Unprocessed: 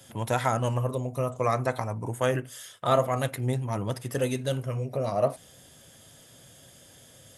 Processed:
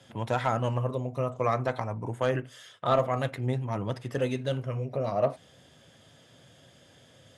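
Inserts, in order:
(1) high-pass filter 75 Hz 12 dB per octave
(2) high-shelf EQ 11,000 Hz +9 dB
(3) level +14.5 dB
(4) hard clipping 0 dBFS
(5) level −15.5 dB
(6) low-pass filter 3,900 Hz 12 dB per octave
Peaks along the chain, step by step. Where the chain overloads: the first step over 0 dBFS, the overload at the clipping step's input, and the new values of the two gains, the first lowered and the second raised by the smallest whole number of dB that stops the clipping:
−9.5, −9.5, +5.0, 0.0, −15.5, −15.0 dBFS
step 3, 5.0 dB
step 3 +9.5 dB, step 5 −10.5 dB

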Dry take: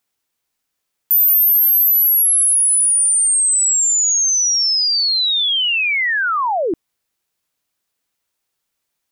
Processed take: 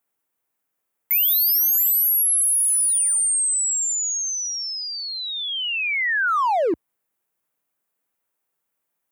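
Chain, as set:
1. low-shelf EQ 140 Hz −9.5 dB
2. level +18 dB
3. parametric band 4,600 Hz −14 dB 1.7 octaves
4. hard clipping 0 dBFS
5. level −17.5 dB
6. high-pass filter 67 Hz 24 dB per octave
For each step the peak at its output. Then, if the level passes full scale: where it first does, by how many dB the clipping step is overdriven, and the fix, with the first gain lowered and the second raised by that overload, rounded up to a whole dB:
−9.5, +8.5, +7.0, 0.0, −17.5, −16.5 dBFS
step 2, 7.0 dB
step 2 +11 dB, step 5 −10.5 dB

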